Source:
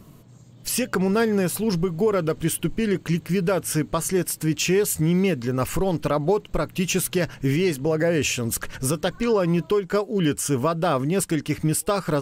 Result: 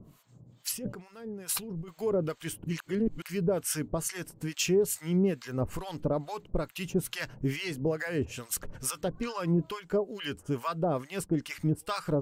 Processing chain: 0.71–1.88 negative-ratio compressor -32 dBFS, ratio -1; 2.64–3.22 reverse; harmonic tremolo 2.3 Hz, depth 100%, crossover 840 Hz; gain -3.5 dB

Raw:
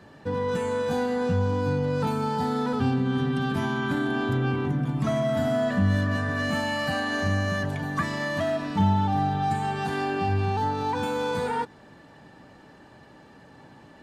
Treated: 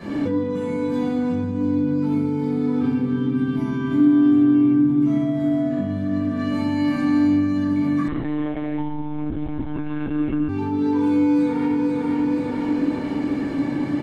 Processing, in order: feedback echo 0.485 s, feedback 36%, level -10.5 dB; shoebox room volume 560 m³, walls mixed, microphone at 5.8 m; 8.08–10.49 monotone LPC vocoder at 8 kHz 150 Hz; compressor 12:1, threshold -31 dBFS, peak gain reduction 29 dB; small resonant body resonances 290/2200 Hz, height 17 dB, ringing for 45 ms; gain +3.5 dB

